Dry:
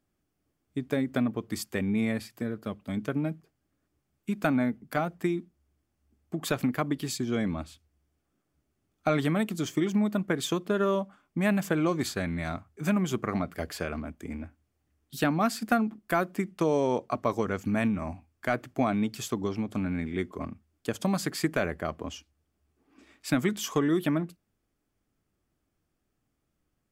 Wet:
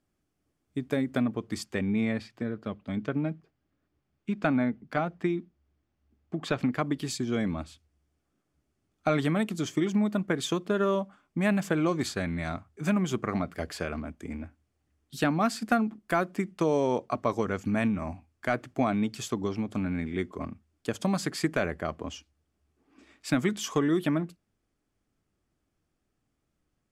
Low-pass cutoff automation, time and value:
1.04 s 12 kHz
2.32 s 4.4 kHz
6.55 s 4.4 kHz
6.96 s 10 kHz

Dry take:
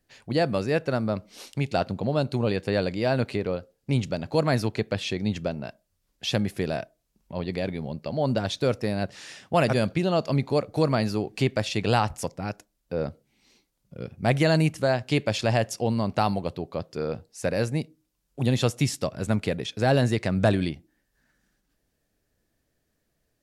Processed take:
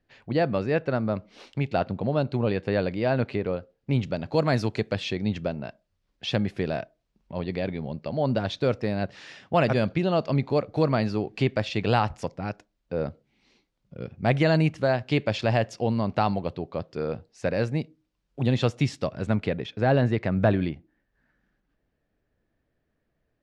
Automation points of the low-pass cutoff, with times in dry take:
3.91 s 3.1 kHz
4.79 s 7.8 kHz
5.23 s 3.9 kHz
19.20 s 3.9 kHz
19.85 s 2.4 kHz

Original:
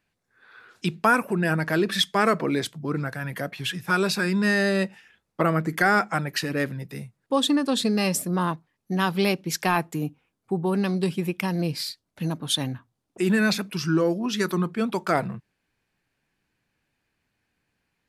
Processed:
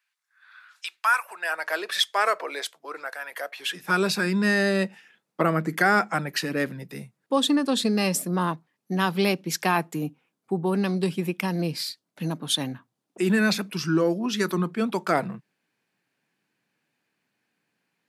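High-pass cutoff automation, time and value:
high-pass 24 dB/octave
0.98 s 1.1 kHz
1.74 s 530 Hz
3.53 s 530 Hz
3.96 s 150 Hz

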